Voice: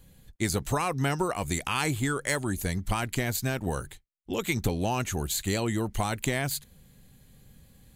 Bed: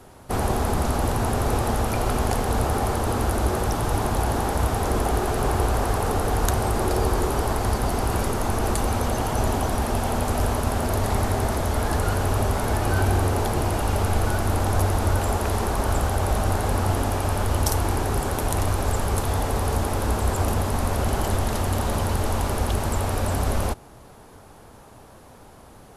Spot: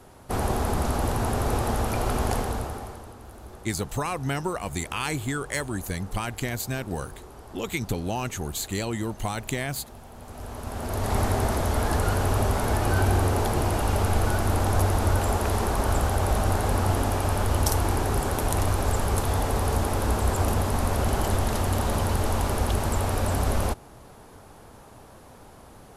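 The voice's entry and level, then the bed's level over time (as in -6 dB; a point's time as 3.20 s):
3.25 s, -1.0 dB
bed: 2.38 s -2.5 dB
3.17 s -21.5 dB
10.12 s -21.5 dB
11.18 s -1 dB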